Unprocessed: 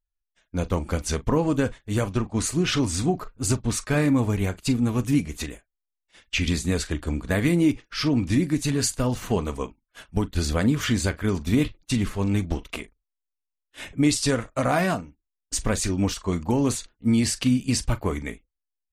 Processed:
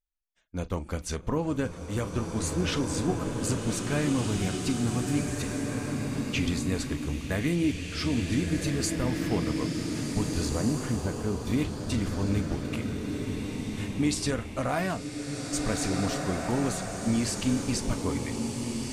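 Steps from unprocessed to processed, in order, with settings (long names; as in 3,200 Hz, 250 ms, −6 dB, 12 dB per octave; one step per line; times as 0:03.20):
0:10.49–0:11.39: low-pass filter 1,200 Hz 12 dB per octave
slow-attack reverb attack 1,840 ms, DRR 1 dB
level −6.5 dB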